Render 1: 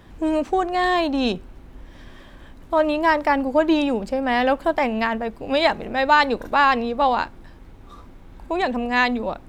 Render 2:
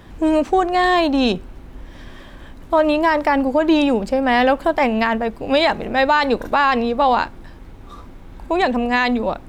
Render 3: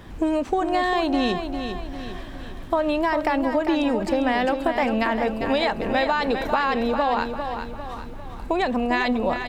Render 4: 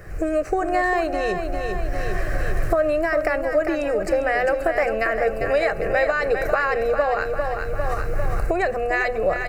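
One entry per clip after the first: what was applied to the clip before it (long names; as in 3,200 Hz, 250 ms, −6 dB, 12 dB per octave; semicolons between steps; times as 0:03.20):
brickwall limiter −11.5 dBFS, peak gain reduction 7.5 dB; level +5 dB
downward compressor, threshold −19 dBFS, peak gain reduction 8.5 dB; on a send: repeating echo 400 ms, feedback 46%, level −7.5 dB
camcorder AGC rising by 22 dB per second; phaser with its sweep stopped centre 930 Hz, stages 6; on a send at −16.5 dB: convolution reverb RT60 1.0 s, pre-delay 6 ms; on the sum: level +4.5 dB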